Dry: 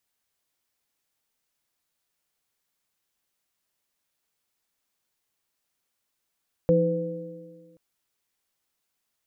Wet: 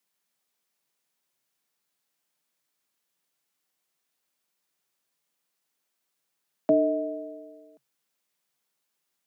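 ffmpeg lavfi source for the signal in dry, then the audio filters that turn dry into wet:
-f lavfi -i "aevalsrc='0.1*pow(10,-3*t/1.66)*sin(2*PI*170*t)+0.0447*pow(10,-3*t/2.01)*sin(2*PI*318*t)+0.15*pow(10,-3*t/1.61)*sin(2*PI*504*t)':d=1.08:s=44100"
-af "afreqshift=130"

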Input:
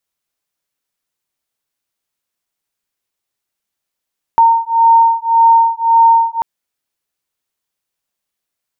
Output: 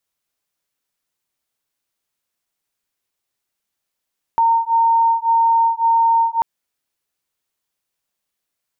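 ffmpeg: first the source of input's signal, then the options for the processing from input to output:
-f lavfi -i "aevalsrc='0.316*(sin(2*PI*916*t)+sin(2*PI*917.8*t))':d=2.04:s=44100"
-af "alimiter=limit=0.282:level=0:latency=1:release=115"

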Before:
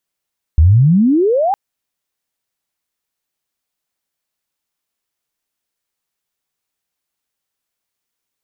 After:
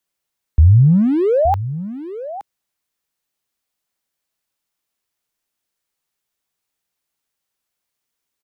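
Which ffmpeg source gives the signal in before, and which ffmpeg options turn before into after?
-f lavfi -i "aevalsrc='pow(10,(-4.5-7.5*t/0.96)/20)*sin(2*PI*72*0.96/log(830/72)*(exp(log(830/72)*t/0.96)-1))':d=0.96:s=44100"
-filter_complex "[0:a]acrossover=split=250|360[s0][s1][s2];[s1]asoftclip=type=hard:threshold=0.0237[s3];[s0][s3][s2]amix=inputs=3:normalize=0,aecho=1:1:869:0.211"

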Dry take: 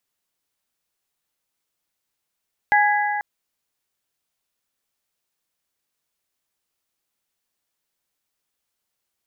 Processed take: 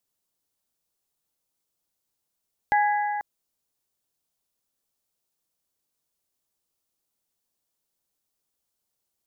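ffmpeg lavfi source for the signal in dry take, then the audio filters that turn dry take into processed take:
-f lavfi -i "aevalsrc='0.188*pow(10,-3*t/2.93)*sin(2*PI*830*t)+0.141*pow(10,-3*t/2.38)*sin(2*PI*1660*t)+0.106*pow(10,-3*t/2.253)*sin(2*PI*1992*t)':d=0.49:s=44100"
-af "equalizer=f=2000:t=o:w=1.8:g=-8.5"

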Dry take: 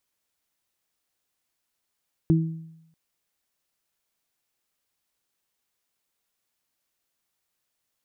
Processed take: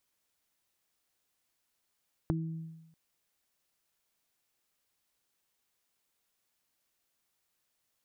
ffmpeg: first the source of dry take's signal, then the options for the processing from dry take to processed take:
-f lavfi -i "aevalsrc='0.178*pow(10,-3*t/0.83)*sin(2*PI*162*t)+0.126*pow(10,-3*t/0.47)*sin(2*PI*324*t)':d=0.64:s=44100"
-af "acompressor=threshold=0.0282:ratio=6"

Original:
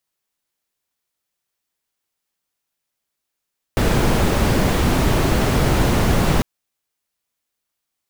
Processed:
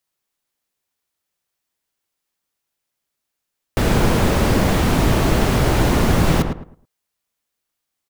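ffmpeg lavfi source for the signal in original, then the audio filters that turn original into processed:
-f lavfi -i "anoisesrc=c=brown:a=0.741:d=2.65:r=44100:seed=1"
-filter_complex "[0:a]asplit=2[s0][s1];[s1]adelay=108,lowpass=f=1600:p=1,volume=0.531,asplit=2[s2][s3];[s3]adelay=108,lowpass=f=1600:p=1,volume=0.27,asplit=2[s4][s5];[s5]adelay=108,lowpass=f=1600:p=1,volume=0.27,asplit=2[s6][s7];[s7]adelay=108,lowpass=f=1600:p=1,volume=0.27[s8];[s0][s2][s4][s6][s8]amix=inputs=5:normalize=0"

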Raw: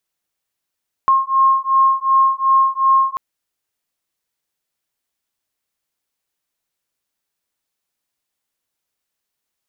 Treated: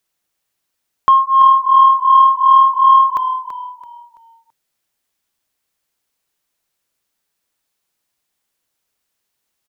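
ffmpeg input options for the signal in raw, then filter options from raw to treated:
-f lavfi -i "aevalsrc='0.188*(sin(2*PI*1070*t)+sin(2*PI*1072.7*t))':d=2.09:s=44100"
-filter_complex "[0:a]acontrast=22,asplit=2[s0][s1];[s1]asplit=4[s2][s3][s4][s5];[s2]adelay=333,afreqshift=-39,volume=0.299[s6];[s3]adelay=666,afreqshift=-78,volume=0.101[s7];[s4]adelay=999,afreqshift=-117,volume=0.0347[s8];[s5]adelay=1332,afreqshift=-156,volume=0.0117[s9];[s6][s7][s8][s9]amix=inputs=4:normalize=0[s10];[s0][s10]amix=inputs=2:normalize=0"

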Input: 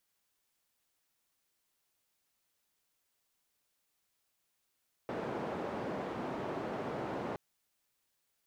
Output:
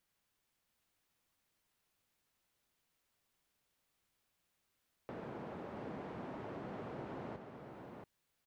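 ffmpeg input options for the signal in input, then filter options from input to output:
-f lavfi -i "anoisesrc=c=white:d=2.27:r=44100:seed=1,highpass=f=150,lowpass=f=670,volume=-17.9dB"
-af "bass=f=250:g=5,treble=f=4000:g=-5,acompressor=threshold=0.001:ratio=1.5,aecho=1:1:679:0.531"

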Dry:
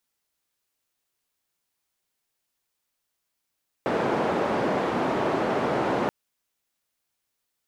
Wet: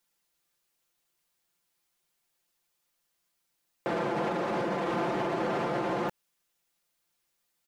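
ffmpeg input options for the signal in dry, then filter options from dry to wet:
-f lavfi -i "anoisesrc=c=white:d=2.23:r=44100:seed=1,highpass=f=190,lowpass=f=720,volume=-4.5dB"
-af "aecho=1:1:5.8:0.71,alimiter=limit=0.0794:level=0:latency=1:release=74"

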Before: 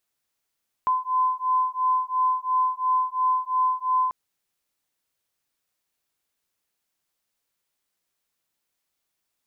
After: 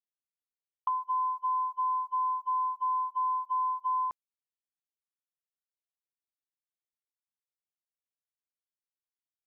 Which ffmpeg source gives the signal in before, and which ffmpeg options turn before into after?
-f lavfi -i "aevalsrc='0.0668*(sin(2*PI*1020*t)+sin(2*PI*1022.9*t))':d=3.24:s=44100"
-af "agate=range=0.0282:threshold=0.0355:ratio=16:detection=peak,acompressor=threshold=0.0398:ratio=6"

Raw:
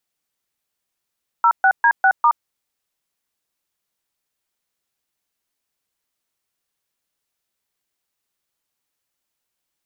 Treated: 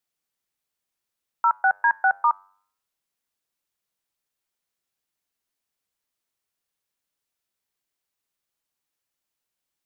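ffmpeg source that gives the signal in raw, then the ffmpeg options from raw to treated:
-f lavfi -i "aevalsrc='0.224*clip(min(mod(t,0.2),0.071-mod(t,0.2))/0.002,0,1)*(eq(floor(t/0.2),0)*(sin(2*PI*941*mod(t,0.2))+sin(2*PI*1336*mod(t,0.2)))+eq(floor(t/0.2),1)*(sin(2*PI*770*mod(t,0.2))+sin(2*PI*1477*mod(t,0.2)))+eq(floor(t/0.2),2)*(sin(2*PI*941*mod(t,0.2))+sin(2*PI*1633*mod(t,0.2)))+eq(floor(t/0.2),3)*(sin(2*PI*770*mod(t,0.2))+sin(2*PI*1477*mod(t,0.2)))+eq(floor(t/0.2),4)*(sin(2*PI*941*mod(t,0.2))+sin(2*PI*1209*mod(t,0.2))))':d=1:s=44100"
-af "flanger=delay=5.7:depth=5:regen=-89:speed=0.23:shape=sinusoidal"

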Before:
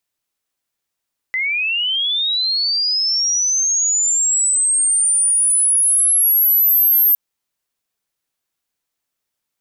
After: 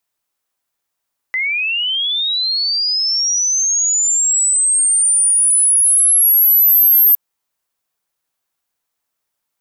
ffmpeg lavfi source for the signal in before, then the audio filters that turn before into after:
-f lavfi -i "aevalsrc='pow(10,(-17+7*t/5.81)/20)*sin(2*PI*(2000*t+11000*t*t/(2*5.81)))':d=5.81:s=44100"
-filter_complex "[0:a]highshelf=f=8600:g=4,acrossover=split=690|1300[s0][s1][s2];[s1]acontrast=88[s3];[s0][s3][s2]amix=inputs=3:normalize=0"

